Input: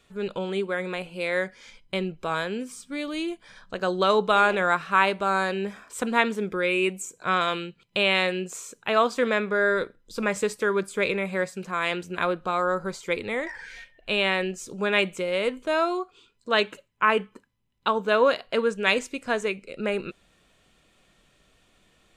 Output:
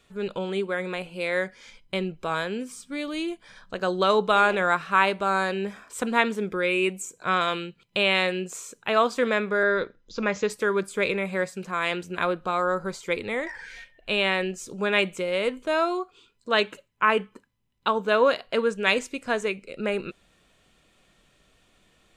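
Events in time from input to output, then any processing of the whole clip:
0:09.63–0:10.50: Butterworth low-pass 6,900 Hz 96 dB per octave

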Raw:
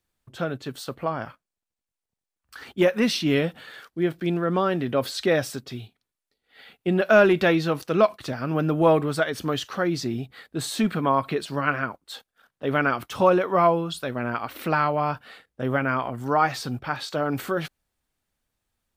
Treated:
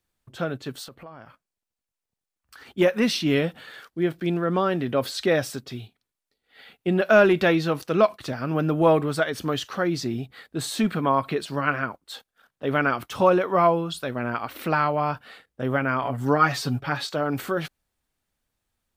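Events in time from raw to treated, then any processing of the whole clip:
0:00.87–0:02.74: downward compressor 3 to 1, threshold −44 dBFS
0:16.02–0:17.07: comb filter 7.1 ms, depth 99%

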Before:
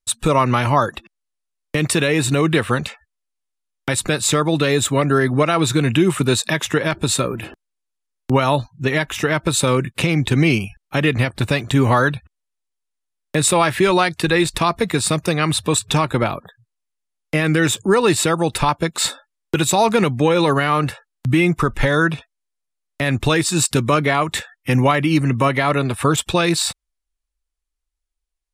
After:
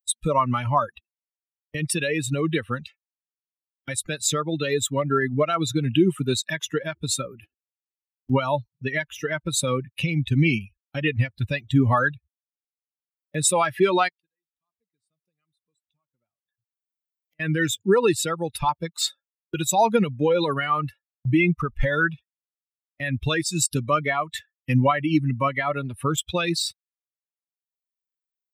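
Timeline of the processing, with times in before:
0:14.08–0:17.40: gate with flip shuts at −20 dBFS, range −26 dB
whole clip: spectral dynamics exaggerated over time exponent 2; upward compression, threshold −42 dBFS; noise gate −46 dBFS, range −21 dB

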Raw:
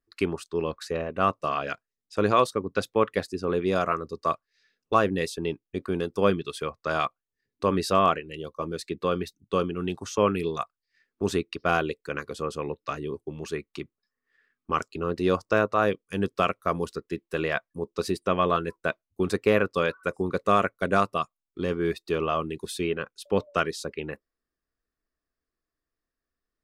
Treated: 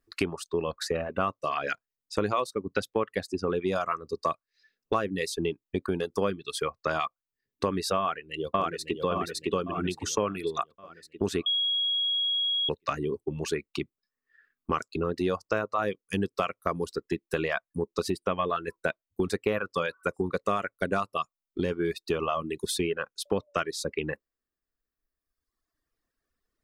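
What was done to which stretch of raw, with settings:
0:07.98–0:09.03: delay throw 560 ms, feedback 50%, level −1 dB
0:11.46–0:12.69: beep over 3,310 Hz −22.5 dBFS
whole clip: reverb reduction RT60 1.5 s; downward compressor 4 to 1, threshold −33 dBFS; level +7 dB

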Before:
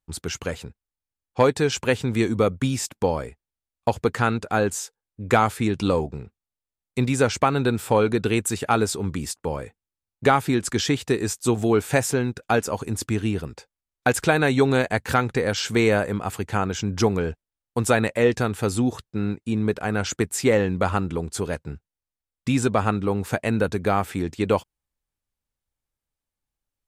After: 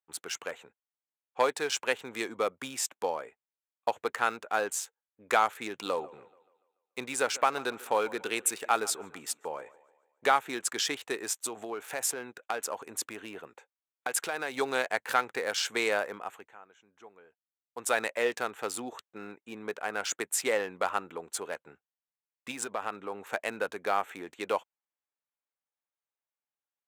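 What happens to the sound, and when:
0:05.77–0:10.26: feedback echo with a high-pass in the loop 144 ms, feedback 48%, high-pass 190 Hz, level −19 dB
0:11.42–0:14.55: downward compressor 10 to 1, threshold −20 dBFS
0:16.13–0:18.00: duck −20.5 dB, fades 0.43 s
0:22.51–0:23.33: downward compressor, threshold −20 dBFS
whole clip: adaptive Wiener filter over 9 samples; high-pass filter 610 Hz 12 dB per octave; high-shelf EQ 7,400 Hz +7 dB; level −4 dB

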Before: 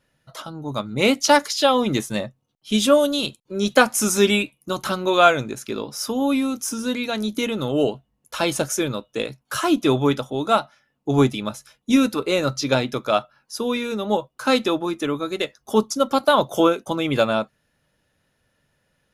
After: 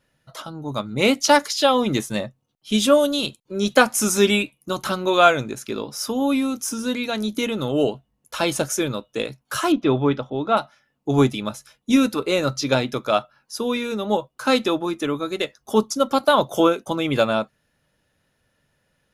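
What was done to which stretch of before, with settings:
0:09.72–0:10.57: high-frequency loss of the air 250 metres

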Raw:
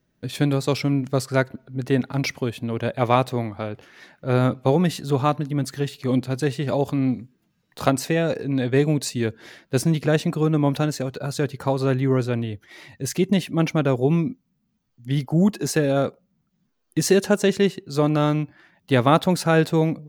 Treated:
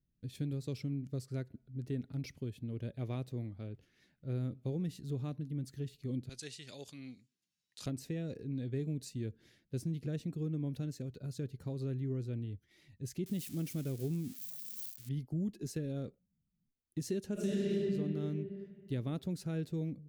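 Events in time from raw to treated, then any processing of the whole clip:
0:06.29–0:07.86: meter weighting curve ITU-R 468
0:13.26–0:15.09: spike at every zero crossing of −16 dBFS
0:17.33–0:17.74: thrown reverb, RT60 2.3 s, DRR −9.5 dB
whole clip: guitar amp tone stack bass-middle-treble 10-0-1; downward compressor 2 to 1, threshold −39 dBFS; dynamic equaliser 390 Hz, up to +5 dB, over −54 dBFS, Q 1; level +1.5 dB

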